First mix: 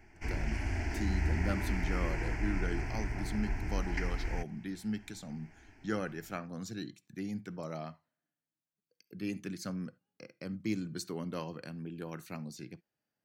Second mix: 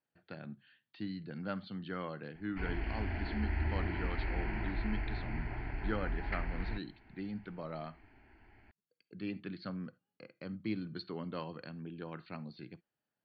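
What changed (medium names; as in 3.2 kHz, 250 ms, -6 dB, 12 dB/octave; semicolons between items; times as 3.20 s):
background: entry +2.35 s; master: add rippled Chebyshev low-pass 4.5 kHz, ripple 3 dB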